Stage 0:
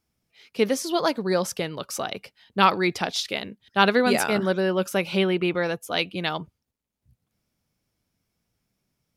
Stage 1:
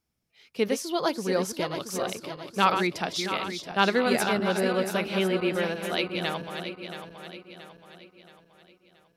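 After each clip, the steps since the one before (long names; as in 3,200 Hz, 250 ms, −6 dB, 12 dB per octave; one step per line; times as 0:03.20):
feedback delay that plays each chunk backwards 338 ms, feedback 66%, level −7 dB
level −4 dB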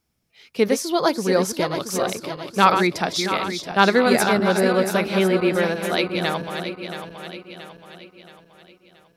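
dynamic equaliser 2,900 Hz, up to −7 dB, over −49 dBFS, Q 4.5
level +7 dB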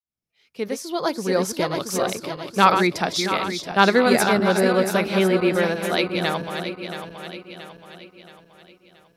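fade in at the beginning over 1.73 s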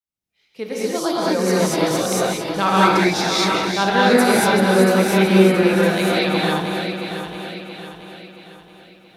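in parallel at +2 dB: brickwall limiter −12.5 dBFS, peak gain reduction 11 dB
on the sum: reverb whose tail is shaped and stops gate 260 ms rising, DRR −6.5 dB
level −9.5 dB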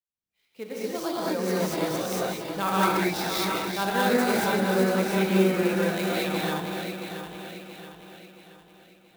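converter with an unsteady clock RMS 0.023 ms
level −8.5 dB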